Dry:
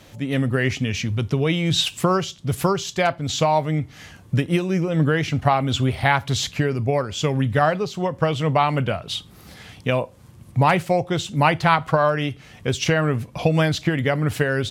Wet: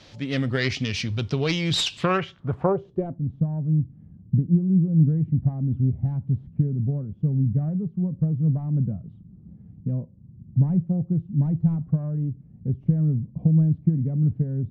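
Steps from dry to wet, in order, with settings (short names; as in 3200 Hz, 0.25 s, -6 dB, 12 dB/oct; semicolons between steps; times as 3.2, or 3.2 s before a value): self-modulated delay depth 0.22 ms; low-pass sweep 4800 Hz -> 190 Hz, 1.9–3.24; gain -3.5 dB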